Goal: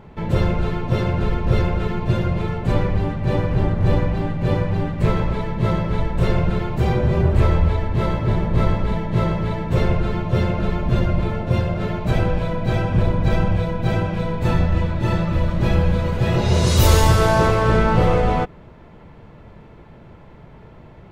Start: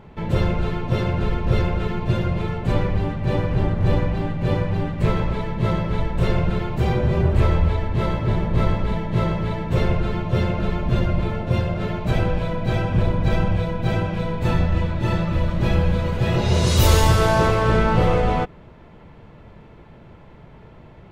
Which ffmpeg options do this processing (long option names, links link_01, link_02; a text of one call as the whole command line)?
ffmpeg -i in.wav -af "equalizer=frequency=3000:width=1.5:gain=-2,volume=1.5dB" out.wav